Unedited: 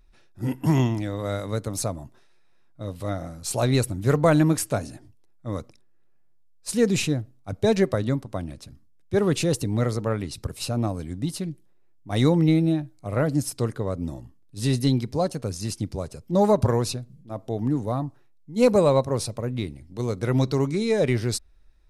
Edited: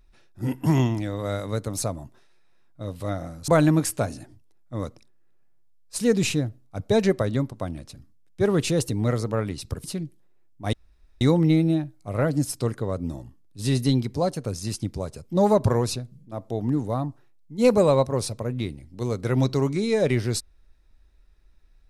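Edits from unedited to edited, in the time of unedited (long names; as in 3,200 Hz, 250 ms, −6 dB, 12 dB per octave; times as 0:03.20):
0:03.48–0:04.21: remove
0:10.57–0:11.30: remove
0:12.19: splice in room tone 0.48 s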